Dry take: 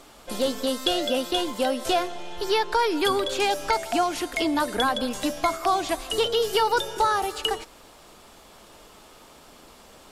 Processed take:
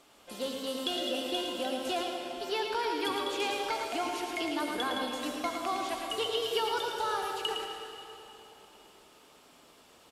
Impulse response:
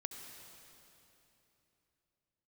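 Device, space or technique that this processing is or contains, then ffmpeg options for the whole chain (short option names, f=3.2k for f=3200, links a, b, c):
PA in a hall: -filter_complex "[0:a]highpass=f=130:p=1,equalizer=f=2.8k:t=o:w=0.54:g=4,aecho=1:1:111:0.531[a];[1:a]atrim=start_sample=2205[b];[a][b]afir=irnorm=-1:irlink=0,volume=-7.5dB"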